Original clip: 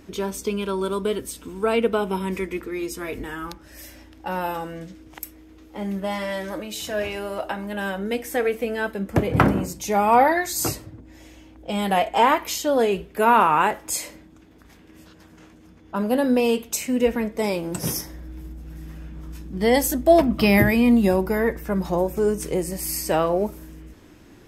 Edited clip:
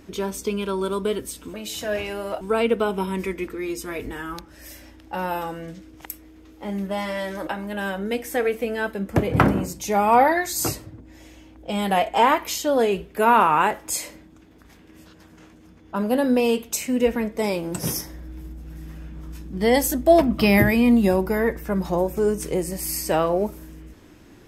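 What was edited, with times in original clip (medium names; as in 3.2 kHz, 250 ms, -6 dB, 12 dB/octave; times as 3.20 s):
6.60–7.47 s: move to 1.54 s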